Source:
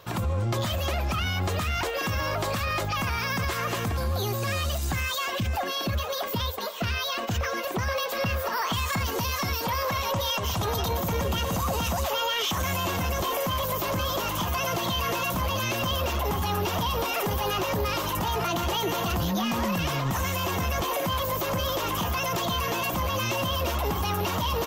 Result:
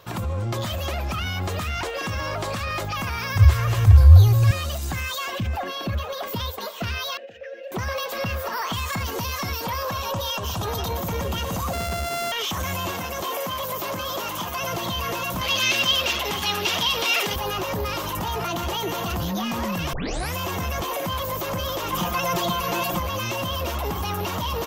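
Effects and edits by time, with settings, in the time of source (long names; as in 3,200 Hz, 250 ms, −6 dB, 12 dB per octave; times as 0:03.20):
0:01.71–0:02.74: parametric band 14,000 Hz −11 dB 0.24 octaves
0:03.35–0:04.51: low shelf with overshoot 140 Hz +13.5 dB, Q 3
0:05.38–0:06.23: bass and treble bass +2 dB, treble −7 dB
0:07.17–0:07.72: formant filter e
0:09.77–0:10.66: notch filter 2,100 Hz, Q 5.6
0:11.73–0:12.32: samples sorted by size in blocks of 64 samples
0:12.91–0:14.62: high-pass filter 220 Hz 6 dB per octave
0:15.41–0:17.36: meter weighting curve D
0:19.93: tape start 0.42 s
0:21.92–0:22.99: comb filter 5.7 ms, depth 90%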